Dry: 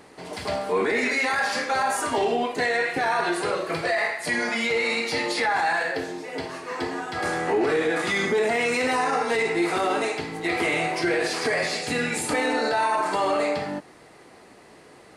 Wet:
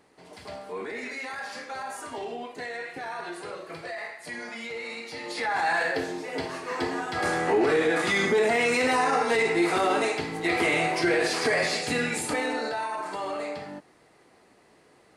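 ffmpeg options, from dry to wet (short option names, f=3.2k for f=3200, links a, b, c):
-af "afade=t=in:st=5.2:d=0.65:silence=0.251189,afade=t=out:st=11.75:d=1.13:silence=0.354813"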